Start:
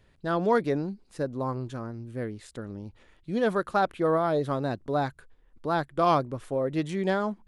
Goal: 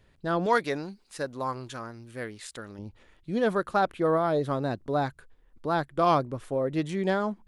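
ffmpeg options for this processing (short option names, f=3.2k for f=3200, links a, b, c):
-filter_complex "[0:a]asettb=1/sr,asplit=3[a][b][c];[a]atrim=end=0.464[d];[b]atrim=start=0.46:end=2.79,asetpts=PTS-STARTPTS,afade=t=in:d=0.004:c=qsin,afade=t=out:st=2.326:d=0.004:c=qsin,tiltshelf=f=690:g=-8[e];[c]atrim=start=2.786[f];[d][e]acrossfade=d=0.004:c1=hsin:c2=qsin[g];[g][f]acrossfade=d=0.004:c1=qsin:c2=hsin"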